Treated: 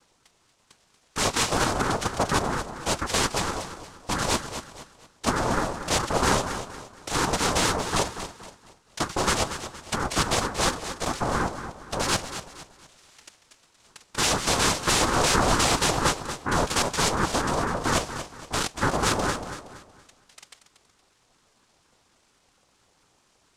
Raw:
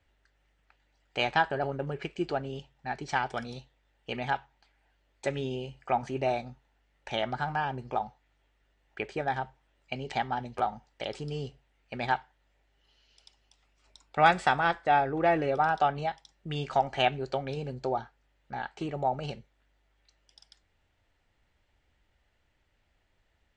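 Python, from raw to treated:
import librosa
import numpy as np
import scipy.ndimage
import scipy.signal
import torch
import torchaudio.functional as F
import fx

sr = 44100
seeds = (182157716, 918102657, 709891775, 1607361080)

p1 = fx.fold_sine(x, sr, drive_db=18, ceiling_db=-7.5)
p2 = fx.noise_vocoder(p1, sr, seeds[0], bands=2)
p3 = p2 + fx.echo_feedback(p2, sr, ms=234, feedback_pct=36, wet_db=-10.5, dry=0)
p4 = fx.ring_lfo(p3, sr, carrier_hz=460.0, swing_pct=55, hz=4.3)
y = p4 * librosa.db_to_amplitude(-8.0)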